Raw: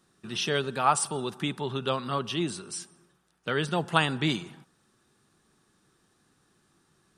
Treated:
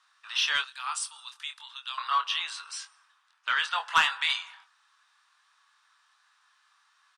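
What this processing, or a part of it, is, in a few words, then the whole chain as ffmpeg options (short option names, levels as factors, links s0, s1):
intercom: -filter_complex "[0:a]highpass=f=1100:w=0.5412,highpass=f=1100:w=1.3066,asettb=1/sr,asplit=3[s0][s1][s2];[s0]atrim=end=0.644[s3];[s1]atrim=start=0.64:end=1.98,asetpts=PTS-STARTPTS,afade=t=in:d=0.004:c=qsin,afade=t=out:st=1.336:d=0.004:c=qsin,aderivative[s4];[s2]atrim=start=1.976[s5];[s3][s4]acrossfade=d=0.004:c1=hsin:c2=qsin[s6];[s6][s5]acrossfade=d=0.004:c1=qsin:c2=hsin,highpass=450,lowpass=4800,equalizer=f=1000:t=o:w=0.32:g=6.5,asoftclip=type=tanh:threshold=0.119,asplit=2[s7][s8];[s8]adelay=24,volume=0.447[s9];[s7][s9]amix=inputs=2:normalize=0,volume=1.88"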